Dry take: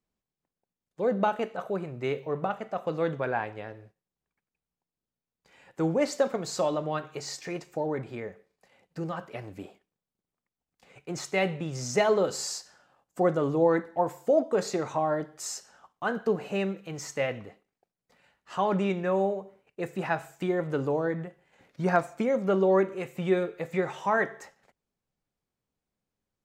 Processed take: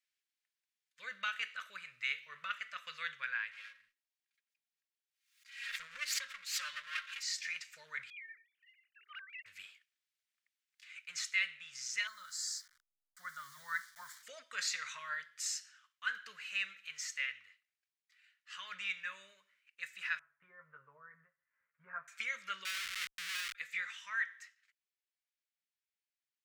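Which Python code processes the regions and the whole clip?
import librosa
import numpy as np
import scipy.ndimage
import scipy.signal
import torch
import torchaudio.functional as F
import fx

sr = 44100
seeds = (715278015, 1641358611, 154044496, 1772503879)

y = fx.chain(x, sr, fx.lower_of_two(delay_ms=3.7),
    fx.pre_swell(db_per_s=91.0), at=(3.51, 7.23))
y = fx.chain(y, sr, fx.sine_speech(),
    fx.transient(attack_db=4, sustain_db=12),
    fx.differentiator(), at=(8.1, 9.46))
y = fx.chain(y, sr, fx.delta_hold(step_db=-47.0),
    fx.fixed_phaser(hz=1100.0, stages=4), at=(12.07, 14.23))
y = fx.chain(y, sr, fx.lowpass(hz=1100.0, slope=24),
    fx.doubler(ms=13.0, db=-4), at=(20.19, 22.08))
y = fx.chain(y, sr, fx.level_steps(step_db=9),
    fx.schmitt(flips_db=-42.5), at=(22.65, 23.55))
y = scipy.signal.sosfilt(scipy.signal.cheby2(4, 40, 850.0, 'highpass', fs=sr, output='sos'), y)
y = fx.high_shelf(y, sr, hz=7200.0, db=-11.5)
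y = fx.rider(y, sr, range_db=5, speed_s=0.5)
y = F.gain(torch.from_numpy(y), 3.0).numpy()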